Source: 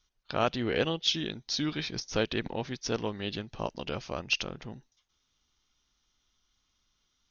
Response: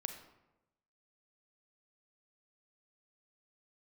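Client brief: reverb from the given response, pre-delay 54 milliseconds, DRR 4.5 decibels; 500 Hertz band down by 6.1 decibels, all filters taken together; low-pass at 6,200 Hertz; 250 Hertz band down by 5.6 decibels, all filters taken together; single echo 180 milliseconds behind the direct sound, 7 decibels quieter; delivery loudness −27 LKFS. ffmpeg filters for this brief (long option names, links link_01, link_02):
-filter_complex "[0:a]lowpass=6200,equalizer=frequency=250:width_type=o:gain=-5.5,equalizer=frequency=500:width_type=o:gain=-6,aecho=1:1:180:0.447,asplit=2[link_01][link_02];[1:a]atrim=start_sample=2205,adelay=54[link_03];[link_02][link_03]afir=irnorm=-1:irlink=0,volume=-3.5dB[link_04];[link_01][link_04]amix=inputs=2:normalize=0,volume=5dB"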